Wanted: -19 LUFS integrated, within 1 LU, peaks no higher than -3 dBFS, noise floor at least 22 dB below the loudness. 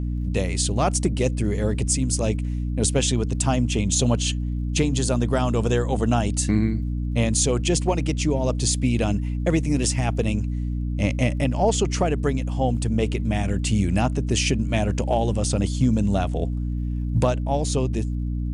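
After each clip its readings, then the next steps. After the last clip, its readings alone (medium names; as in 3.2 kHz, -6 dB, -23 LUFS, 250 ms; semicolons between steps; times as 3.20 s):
tick rate 54 per s; hum 60 Hz; highest harmonic 300 Hz; hum level -23 dBFS; loudness -23.0 LUFS; peak level -8.0 dBFS; loudness target -19.0 LUFS
-> de-click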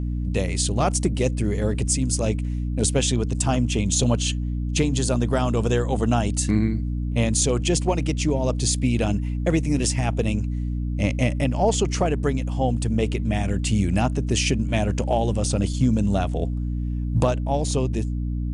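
tick rate 0.32 per s; hum 60 Hz; highest harmonic 300 Hz; hum level -23 dBFS
-> de-hum 60 Hz, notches 5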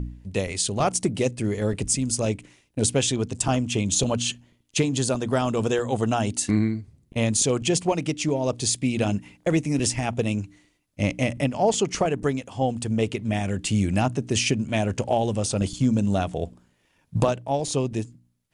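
hum not found; loudness -24.5 LUFS; peak level -6.5 dBFS; loudness target -19.0 LUFS
-> trim +5.5 dB; peak limiter -3 dBFS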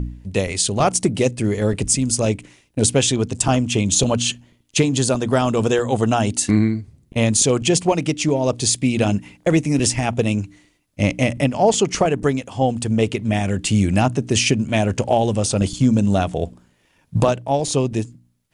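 loudness -19.0 LUFS; peak level -3.0 dBFS; noise floor -61 dBFS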